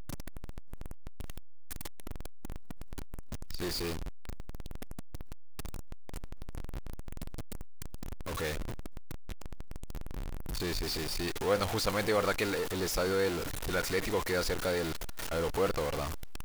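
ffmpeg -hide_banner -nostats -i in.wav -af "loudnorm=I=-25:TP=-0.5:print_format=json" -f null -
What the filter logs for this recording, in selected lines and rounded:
"input_i" : "-33.4",
"input_tp" : "-13.9",
"input_lra" : "15.9",
"input_thresh" : "-45.5",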